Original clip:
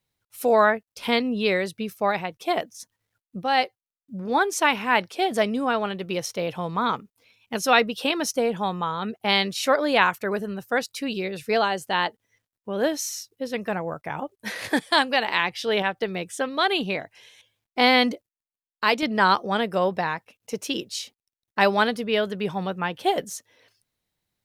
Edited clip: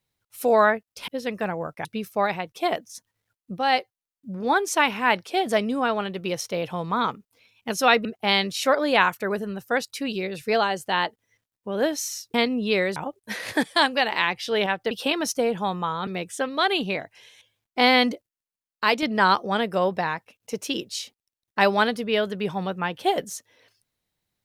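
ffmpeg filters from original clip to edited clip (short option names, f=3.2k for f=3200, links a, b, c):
-filter_complex "[0:a]asplit=8[a][b][c][d][e][f][g][h];[a]atrim=end=1.082[i];[b]atrim=start=13.348:end=14.122[j];[c]atrim=start=1.698:end=7.902[k];[d]atrim=start=9.058:end=13.352[l];[e]atrim=start=1.078:end=1.702[m];[f]atrim=start=14.118:end=16.072[n];[g]atrim=start=7.898:end=9.062[o];[h]atrim=start=16.068[p];[i][j]acrossfade=d=0.004:c1=hsin:c2=hsin[q];[q][k]acrossfade=d=0.004:c1=hsin:c2=hsin[r];[r][l]acrossfade=d=0.004:c1=hsin:c2=hsin[s];[s][m]acrossfade=d=0.004:c1=hsin:c2=hsin[t];[t][n]acrossfade=d=0.004:c1=hsin:c2=hsin[u];[u][o]acrossfade=d=0.004:c1=hsin:c2=hsin[v];[v][p]acrossfade=d=0.004:c1=hsin:c2=hsin"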